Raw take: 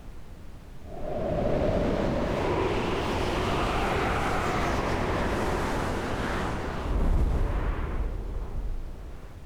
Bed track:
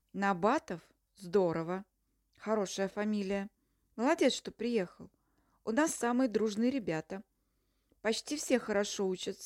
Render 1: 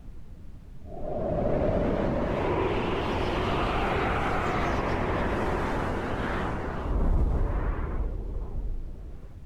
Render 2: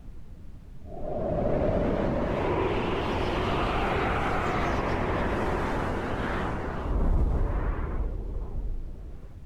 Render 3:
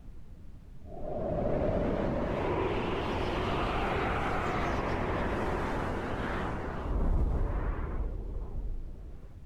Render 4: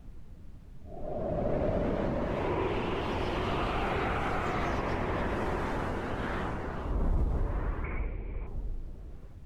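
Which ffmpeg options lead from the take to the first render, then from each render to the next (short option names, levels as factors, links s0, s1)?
-af "afftdn=nr=9:nf=-42"
-af anull
-af "volume=0.631"
-filter_complex "[0:a]asettb=1/sr,asplit=3[s0][s1][s2];[s0]atrim=end=7.844[s3];[s1]atrim=start=7.84:end=8.47,asetpts=PTS-STARTPTS,afade=t=in:d=0.004:c=qsin,afade=t=out:st=0.626:d=0.004:c=qsin,lowpass=f=2300:t=q:w=12[s4];[s2]atrim=start=8.466[s5];[s3][s4]acrossfade=d=0.004:c1=hsin:c2=qsin[s6];[s6][s5]acrossfade=d=0.004:c1=qsin:c2=hsin"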